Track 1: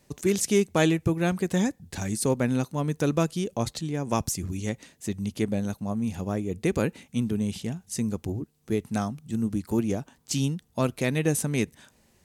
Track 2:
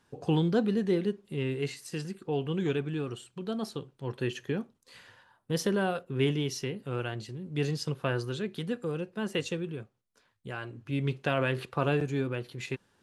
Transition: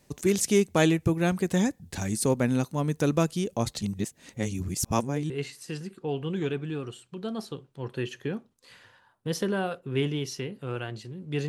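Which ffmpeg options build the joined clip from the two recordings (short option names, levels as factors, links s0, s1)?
-filter_complex "[0:a]apad=whole_dur=11.48,atrim=end=11.48,asplit=2[s0][s1];[s0]atrim=end=3.822[s2];[s1]atrim=start=3.818:end=5.302,asetpts=PTS-STARTPTS,areverse[s3];[1:a]atrim=start=1.538:end=7.72[s4];[s2][s3]acrossfade=d=0.004:c1=hsin:c2=hsin[s5];[s5][s4]acrossfade=d=0.004:c1=hsin:c2=hsin"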